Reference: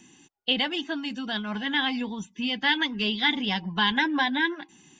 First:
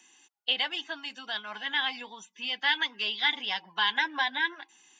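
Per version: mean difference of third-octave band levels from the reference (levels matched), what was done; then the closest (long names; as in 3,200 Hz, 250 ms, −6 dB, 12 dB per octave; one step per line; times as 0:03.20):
4.5 dB: high-pass filter 710 Hz 12 dB per octave
level −2 dB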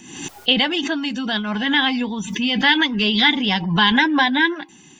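2.0 dB: background raised ahead of every attack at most 63 dB per second
level +7.5 dB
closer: second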